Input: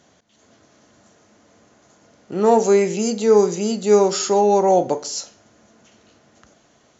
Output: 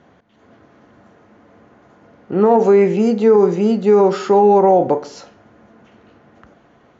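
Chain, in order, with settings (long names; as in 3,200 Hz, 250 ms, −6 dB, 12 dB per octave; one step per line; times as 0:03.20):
low-pass filter 1,900 Hz 12 dB per octave
notch filter 620 Hz, Q 12
brickwall limiter −11 dBFS, peak gain reduction 7 dB
level +7 dB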